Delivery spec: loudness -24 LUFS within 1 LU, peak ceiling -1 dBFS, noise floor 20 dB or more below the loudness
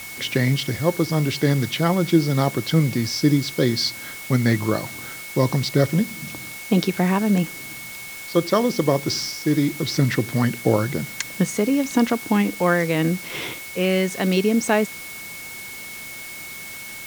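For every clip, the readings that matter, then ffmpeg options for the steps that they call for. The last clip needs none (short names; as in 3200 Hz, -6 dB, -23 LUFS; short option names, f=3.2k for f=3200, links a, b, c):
steady tone 2200 Hz; tone level -36 dBFS; noise floor -36 dBFS; noise floor target -42 dBFS; loudness -21.5 LUFS; peak -3.0 dBFS; loudness target -24.0 LUFS
-> -af "bandreject=f=2.2k:w=30"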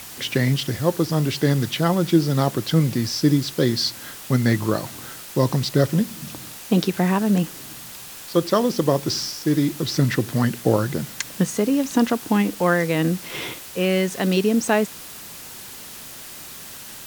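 steady tone none; noise floor -38 dBFS; noise floor target -42 dBFS
-> -af "afftdn=nr=6:nf=-38"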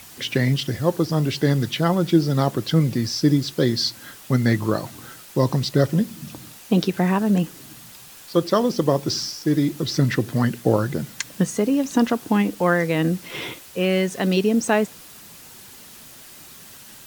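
noise floor -44 dBFS; loudness -21.5 LUFS; peak -4.0 dBFS; loudness target -24.0 LUFS
-> -af "volume=-2.5dB"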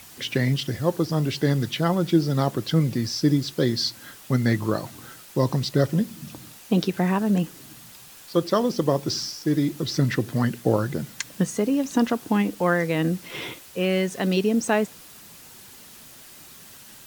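loudness -24.0 LUFS; peak -6.5 dBFS; noise floor -46 dBFS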